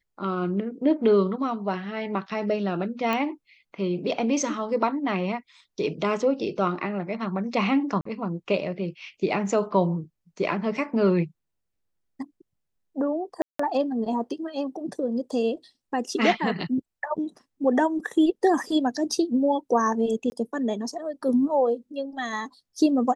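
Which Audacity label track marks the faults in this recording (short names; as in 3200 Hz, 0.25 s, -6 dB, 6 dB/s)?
3.130000	3.130000	pop -14 dBFS
8.010000	8.050000	gap 44 ms
13.420000	13.590000	gap 0.174 s
20.300000	20.320000	gap 20 ms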